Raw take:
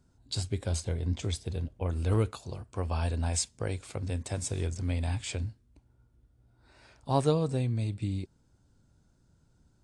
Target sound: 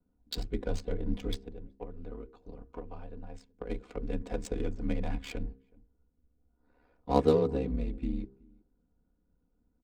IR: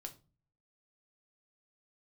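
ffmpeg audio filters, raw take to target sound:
-filter_complex "[0:a]afreqshift=-23,asplit=3[a][b][c];[a]afade=t=out:st=1.44:d=0.02[d];[b]acompressor=threshold=-39dB:ratio=12,afade=t=in:st=1.44:d=0.02,afade=t=out:st=3.68:d=0.02[e];[c]afade=t=in:st=3.68:d=0.02[f];[d][e][f]amix=inputs=3:normalize=0,agate=range=-7dB:threshold=-53dB:ratio=16:detection=peak,aeval=exprs='val(0)*sin(2*PI*36*n/s)':c=same,aecho=1:1:4.1:0.85,asplit=2[g][h];[h]adelay=373.2,volume=-26dB,highshelf=f=4k:g=-8.4[i];[g][i]amix=inputs=2:normalize=0,adynamicsmooth=sensitivity=7:basefreq=1.5k,equalizer=f=380:w=2:g=7.5,bandreject=f=66.27:t=h:w=4,bandreject=f=132.54:t=h:w=4,bandreject=f=198.81:t=h:w=4,bandreject=f=265.08:t=h:w=4,bandreject=f=331.35:t=h:w=4,bandreject=f=397.62:t=h:w=4,bandreject=f=463.89:t=h:w=4"

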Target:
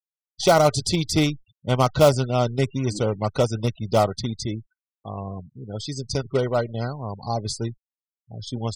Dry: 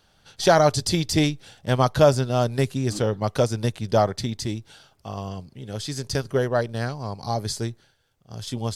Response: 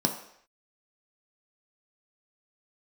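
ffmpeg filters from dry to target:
-af "acrusher=bits=3:mode=log:mix=0:aa=0.000001,afftfilt=real='re*gte(hypot(re,im),0.0224)':imag='im*gte(hypot(re,im),0.0224)':win_size=1024:overlap=0.75,asuperstop=centerf=1700:order=20:qfactor=5.1"

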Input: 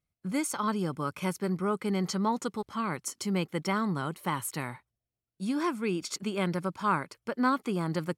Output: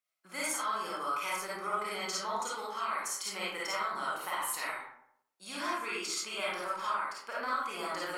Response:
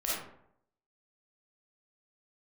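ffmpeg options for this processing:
-filter_complex "[0:a]highpass=880,acompressor=threshold=-35dB:ratio=6[a];[1:a]atrim=start_sample=2205[b];[a][b]afir=irnorm=-1:irlink=0"

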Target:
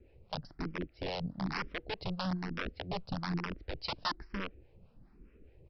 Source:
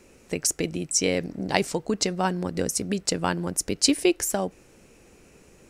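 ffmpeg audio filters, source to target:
-filter_complex "[0:a]aemphasis=mode=reproduction:type=riaa,aresample=11025,aeval=exprs='(mod(5.31*val(0)+1,2)-1)/5.31':c=same,aresample=44100,acrossover=split=540[a][b];[a]aeval=exprs='val(0)*(1-0.7/2+0.7/2*cos(2*PI*4.8*n/s))':c=same[c];[b]aeval=exprs='val(0)*(1-0.7/2-0.7/2*cos(2*PI*4.8*n/s))':c=same[d];[c][d]amix=inputs=2:normalize=0,asplit=2[e][f];[f]afreqshift=1.1[g];[e][g]amix=inputs=2:normalize=1,volume=-8.5dB"

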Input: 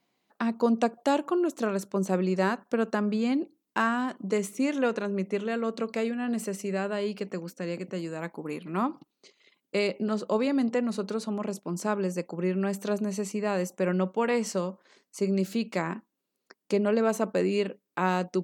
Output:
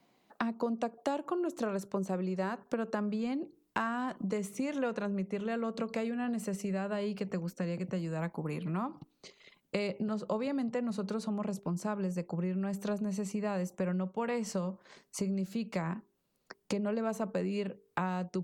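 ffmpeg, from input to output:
-filter_complex "[0:a]acrossover=split=310|680|2100[a][b][c][d];[a]acontrast=30[e];[b]bandreject=f=50:t=h:w=6,bandreject=f=100:t=h:w=6,bandreject=f=150:t=h:w=6,bandreject=f=200:t=h:w=6,bandreject=f=250:t=h:w=6,bandreject=f=300:t=h:w=6,bandreject=f=350:t=h:w=6,bandreject=f=400:t=h:w=6,bandreject=f=450:t=h:w=6[f];[e][f][c][d]amix=inputs=4:normalize=0,asubboost=boost=9:cutoff=94,acompressor=threshold=-37dB:ratio=5,equalizer=f=680:t=o:w=2:g=5,volume=2.5dB"

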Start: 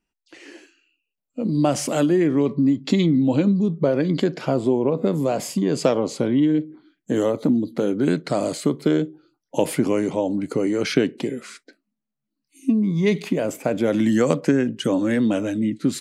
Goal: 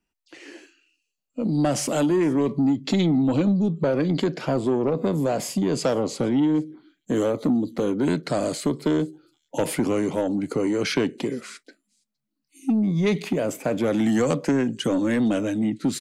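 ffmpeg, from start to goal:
-filter_complex "[0:a]acrossover=split=100|3700[a][b][c];[b]asoftclip=type=tanh:threshold=-15dB[d];[c]aecho=1:1:464:0.0631[e];[a][d][e]amix=inputs=3:normalize=0"

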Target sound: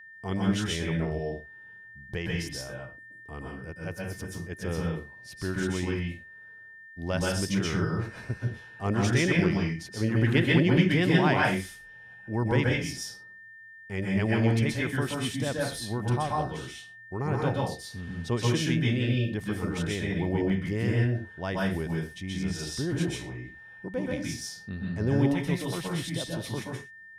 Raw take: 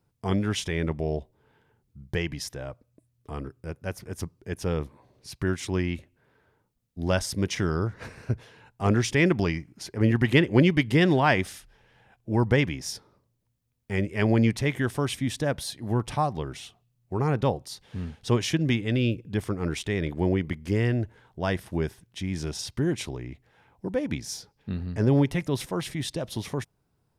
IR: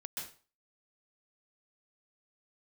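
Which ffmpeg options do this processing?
-filter_complex "[1:a]atrim=start_sample=2205,afade=t=out:st=0.32:d=0.01,atrim=end_sample=14553[a];[0:a][a]afir=irnorm=-1:irlink=0,aeval=exprs='val(0)+0.00501*sin(2*PI*1800*n/s)':c=same"

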